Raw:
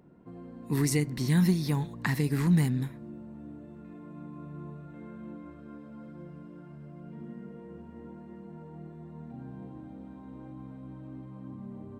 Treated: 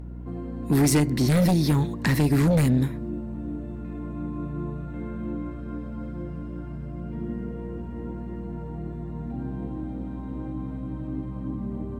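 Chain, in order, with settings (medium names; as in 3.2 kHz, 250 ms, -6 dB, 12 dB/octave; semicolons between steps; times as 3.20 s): sine folder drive 10 dB, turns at -12 dBFS; dynamic bell 320 Hz, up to +6 dB, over -34 dBFS, Q 1.7; hum 60 Hz, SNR 10 dB; trim -5.5 dB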